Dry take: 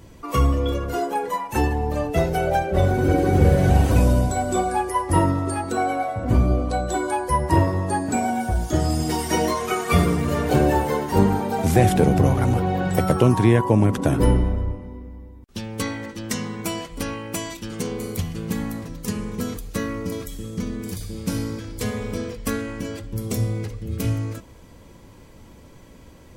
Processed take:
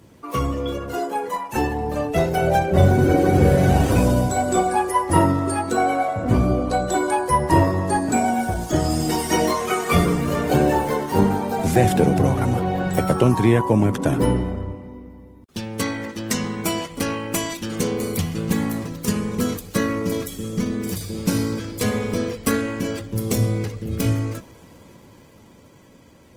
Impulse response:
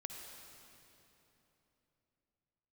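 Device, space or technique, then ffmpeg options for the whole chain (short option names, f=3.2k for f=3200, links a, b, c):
video call: -filter_complex "[0:a]asettb=1/sr,asplit=3[a][b][c];[a]atrim=end=2.424[d];[b]atrim=start=2.42:end=3.04,asetpts=PTS-STARTPTS,afade=t=in:d=0.004:c=qsin,afade=t=out:st=0.616:d=0.004:c=qsin,bass=f=250:g=6,treble=f=4k:g=2[e];[c]atrim=start=3.036[f];[d][e]acrossfade=d=0.004:c1=hsin:c2=qsin[g];[g][f]acrossfade=d=0.004:c1=qsin:c2=hsin,highpass=100,dynaudnorm=f=300:g=13:m=6.5dB,volume=-1dB" -ar 48000 -c:a libopus -b:a 20k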